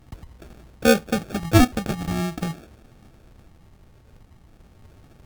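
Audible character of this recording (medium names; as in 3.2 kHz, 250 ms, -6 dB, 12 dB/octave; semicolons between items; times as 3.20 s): phasing stages 6, 0.44 Hz, lowest notch 360–1100 Hz; aliases and images of a low sample rate 1 kHz, jitter 0%; Vorbis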